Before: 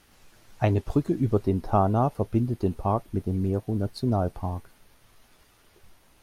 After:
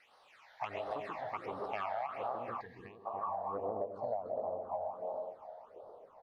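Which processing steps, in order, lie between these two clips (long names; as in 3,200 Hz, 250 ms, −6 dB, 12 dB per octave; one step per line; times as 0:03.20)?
multi-tap delay 130/286/351 ms −10.5/−9/−17.5 dB
soft clipping −22 dBFS, distortion −10 dB
band-pass filter sweep 2,200 Hz → 550 Hz, 0:02.09–0:04.00
on a send at −3 dB: low-shelf EQ 170 Hz −10 dB + convolution reverb RT60 1.9 s, pre-delay 50 ms
on the sum: all-pass phaser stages 8, 1.4 Hz, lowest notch 330–2,400 Hz
flat-topped bell 760 Hz +13.5 dB
downward compressor 20 to 1, threshold −38 dBFS, peak gain reduction 20.5 dB
gain on a spectral selection 0:02.61–0:03.06, 500–1,600 Hz −25 dB
level +4.5 dB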